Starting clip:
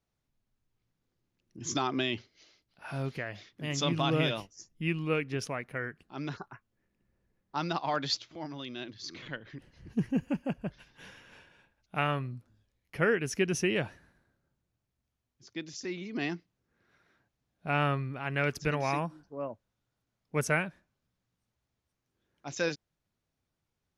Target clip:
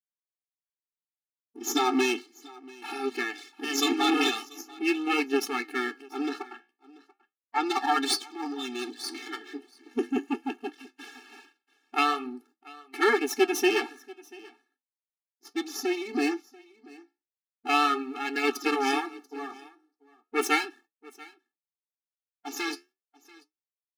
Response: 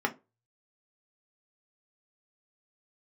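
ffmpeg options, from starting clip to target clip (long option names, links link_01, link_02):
-filter_complex "[0:a]aeval=exprs='max(val(0),0)':channel_layout=same,asettb=1/sr,asplit=3[link_01][link_02][link_03];[link_01]atrim=end=6.424[link_04];[link_02]atrim=start=6.42:end=7.7,asetpts=PTS-STARTPTS,afade=type=in:duration=0.004:curve=qsin,afade=type=out:start_time=1.276:duration=0.004:curve=qsin,lowpass=frequency=2700:poles=1[link_05];[link_03]atrim=start=7.696[link_06];[link_04][link_05]acrossfade=duration=0.004:curve1=hsin:curve2=qsin[link_07];[link_07][link_06]acrossfade=duration=0.004:curve1=qsin:curve2=hsin,asplit=3[link_08][link_09][link_10];[link_08]afade=type=out:start_time=18.02:duration=0.02[link_11];[link_09]acompressor=threshold=-36dB:ratio=2,afade=type=in:start_time=18.02:duration=0.02,afade=type=out:start_time=18.43:duration=0.02[link_12];[link_10]afade=type=in:start_time=18.43:duration=0.02[link_13];[link_11][link_12][link_13]amix=inputs=3:normalize=0,agate=range=-55dB:threshold=-60dB:ratio=16:detection=peak,dynaudnorm=framelen=240:gausssize=11:maxgain=15dB,asettb=1/sr,asplit=3[link_14][link_15][link_16];[link_14]atrim=end=9.574[link_17];[link_15]atrim=start=9.57:end=10.53,asetpts=PTS-STARTPTS,afade=type=in:duration=0.004:curve=qsin,afade=type=out:start_time=0.956:duration=0.004:curve=qsin,aeval=exprs='0.562*(cos(1*acos(clip(val(0)/0.562,-1,1)))-cos(1*PI/2))+0.0794*(cos(3*acos(clip(val(0)/0.562,-1,1)))-cos(3*PI/2))':channel_layout=same[link_18];[link_16]atrim=start=10.526[link_19];[link_17][link_18]acrossfade=duration=0.004:curve1=hsin:curve2=qsin[link_20];[link_20][link_19]acrossfade=duration=0.004:curve1=qsin:curve2=hsin,aecho=1:1:687:0.075,flanger=delay=6.8:depth=9.2:regen=-70:speed=0.38:shape=triangular,afftfilt=real='re*eq(mod(floor(b*sr/1024/230),2),1)':imag='im*eq(mod(floor(b*sr/1024/230),2),1)':win_size=1024:overlap=0.75,volume=4.5dB"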